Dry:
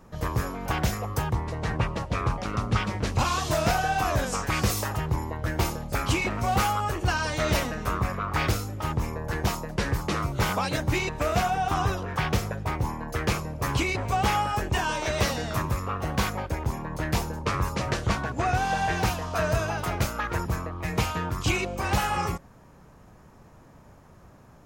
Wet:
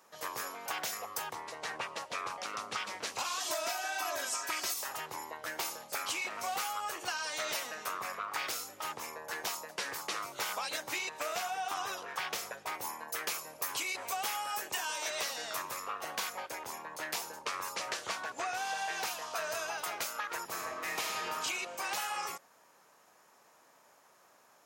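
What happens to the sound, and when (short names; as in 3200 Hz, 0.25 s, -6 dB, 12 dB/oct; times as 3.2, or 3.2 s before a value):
3.4–4.74 comb 3.1 ms, depth 98%
12.74–15.1 high shelf 10000 Hz +11.5 dB
20.46–21.32 reverb throw, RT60 1.6 s, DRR -2 dB
whole clip: HPF 580 Hz 12 dB/oct; high shelf 2700 Hz +9 dB; compressor, threshold -26 dBFS; gain -6.5 dB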